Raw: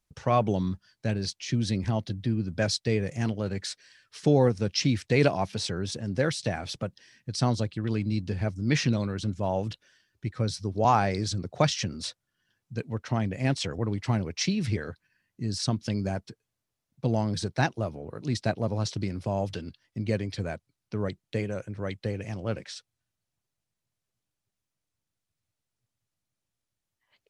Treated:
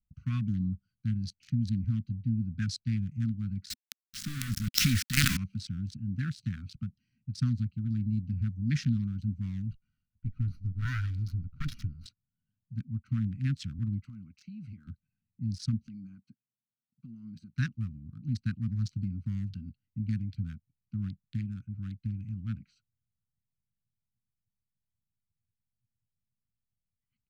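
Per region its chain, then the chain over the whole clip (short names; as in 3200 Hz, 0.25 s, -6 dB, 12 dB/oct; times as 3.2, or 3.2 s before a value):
3.7–5.37 tilt shelf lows -5.5 dB, about 700 Hz + companded quantiser 2-bit + sustainer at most 41 dB/s
9.71–12.06 minimum comb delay 2.1 ms + de-esser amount 30% + bell 7900 Hz -13 dB 0.4 oct
14.05–14.87 HPF 450 Hz 6 dB/oct + compressor 4:1, threshold -36 dBFS
15.87–17.53 HPF 260 Hz + compressor 4:1, threshold -35 dBFS
whole clip: Wiener smoothing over 25 samples; elliptic band-stop 240–1400 Hz, stop band 40 dB; low shelf 310 Hz +9 dB; gain -8 dB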